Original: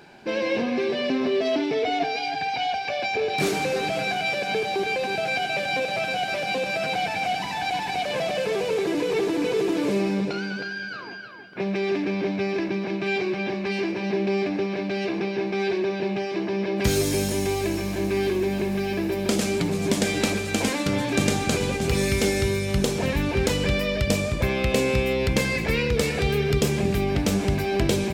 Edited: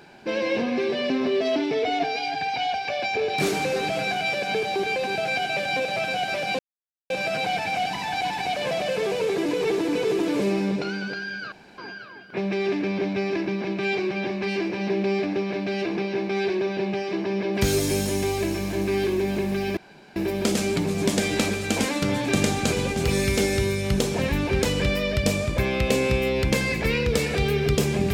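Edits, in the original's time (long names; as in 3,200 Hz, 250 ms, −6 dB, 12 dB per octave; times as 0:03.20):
0:06.59: splice in silence 0.51 s
0:11.01: splice in room tone 0.26 s
0:19.00: splice in room tone 0.39 s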